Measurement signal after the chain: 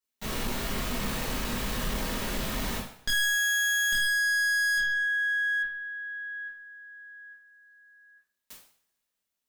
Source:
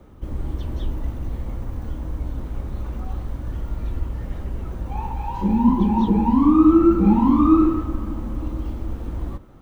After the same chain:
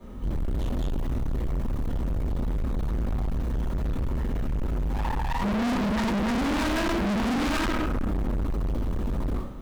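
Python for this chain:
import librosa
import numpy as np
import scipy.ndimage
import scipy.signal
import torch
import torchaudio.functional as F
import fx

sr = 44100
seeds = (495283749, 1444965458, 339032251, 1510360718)

y = fx.tracing_dist(x, sr, depth_ms=0.43)
y = fx.rev_double_slope(y, sr, seeds[0], early_s=0.51, late_s=2.0, knee_db=-27, drr_db=-9.5)
y = np.clip(y, -10.0 ** (-20.0 / 20.0), 10.0 ** (-20.0 / 20.0))
y = F.gain(torch.from_numpy(y), -4.5).numpy()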